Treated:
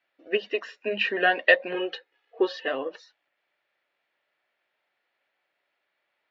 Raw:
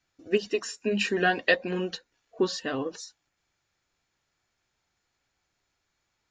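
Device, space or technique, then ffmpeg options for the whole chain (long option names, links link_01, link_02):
phone earpiece: -filter_complex "[0:a]highpass=380,equalizer=frequency=590:width_type=q:width=4:gain=9,equalizer=frequency=1900:width_type=q:width=4:gain=6,equalizer=frequency=2800:width_type=q:width=4:gain=4,lowpass=frequency=3600:width=0.5412,lowpass=frequency=3600:width=1.3066,asettb=1/sr,asplit=3[link_01][link_02][link_03];[link_01]atrim=end=1.744[link_04];[link_02]atrim=start=1.74:end=2.68,asetpts=PTS-STARTPTS,afade=type=in:duration=0.004:curve=qsin,afade=type=out:start_time=0.936:duration=0.004:curve=qsin,aecho=1:1:2.4:0.74,atrim=end_sample=41454[link_05];[link_03]atrim=start=2.676[link_06];[link_04][link_05]acrossfade=duration=0.004:curve1=hsin:curve2=qsin[link_07];[link_07][link_06]acrossfade=duration=0.004:curve1=qsin:curve2=hsin"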